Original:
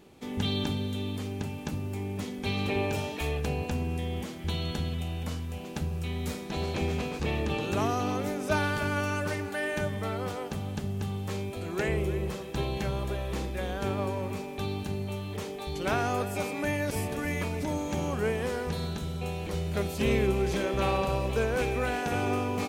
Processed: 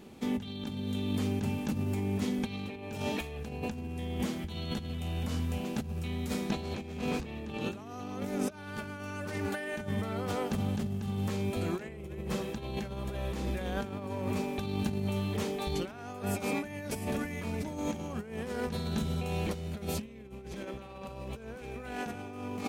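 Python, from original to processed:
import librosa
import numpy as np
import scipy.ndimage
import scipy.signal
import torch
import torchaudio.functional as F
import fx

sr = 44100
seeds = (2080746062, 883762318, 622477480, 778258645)

y = fx.over_compress(x, sr, threshold_db=-34.0, ratio=-0.5)
y = fx.peak_eq(y, sr, hz=220.0, db=9.0, octaves=0.31)
y = F.gain(torch.from_numpy(y), -1.5).numpy()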